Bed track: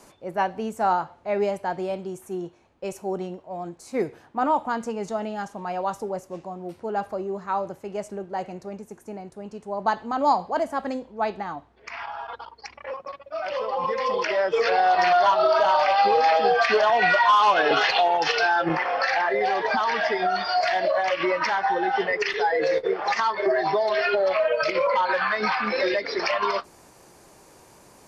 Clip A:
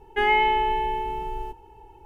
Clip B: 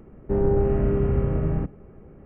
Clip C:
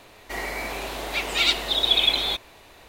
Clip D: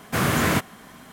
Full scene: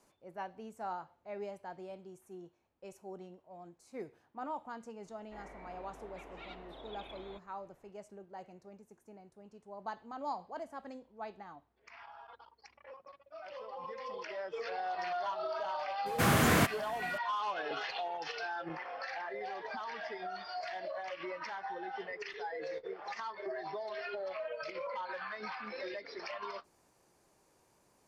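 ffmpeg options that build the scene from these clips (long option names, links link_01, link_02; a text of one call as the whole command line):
ffmpeg -i bed.wav -i cue0.wav -i cue1.wav -i cue2.wav -i cue3.wav -filter_complex "[0:a]volume=-18dB[link_01];[3:a]lowpass=1300[link_02];[4:a]asoftclip=type=tanh:threshold=-12dB[link_03];[link_02]atrim=end=2.88,asetpts=PTS-STARTPTS,volume=-18dB,afade=type=in:duration=0.004:curve=hsin,afade=type=out:start_time=2.876:duration=0.004:curve=hsin,adelay=5020[link_04];[link_03]atrim=end=1.12,asetpts=PTS-STARTPTS,volume=-4.5dB,afade=type=in:duration=0.004:curve=hsin,afade=type=out:start_time=1.116:duration=0.004:curve=hsin,adelay=16060[link_05];[link_01][link_04][link_05]amix=inputs=3:normalize=0" out.wav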